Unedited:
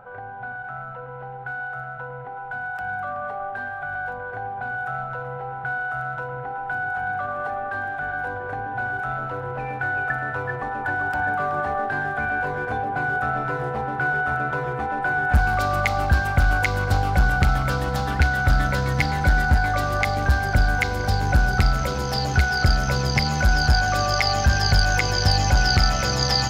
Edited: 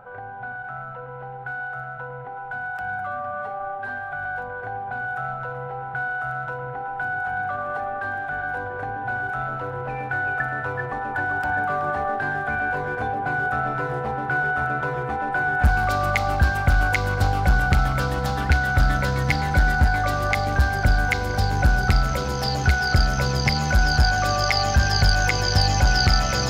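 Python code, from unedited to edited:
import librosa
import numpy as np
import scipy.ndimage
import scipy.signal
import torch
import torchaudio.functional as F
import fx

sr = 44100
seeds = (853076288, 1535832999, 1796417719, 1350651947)

y = fx.edit(x, sr, fx.stretch_span(start_s=2.99, length_s=0.6, factor=1.5), tone=tone)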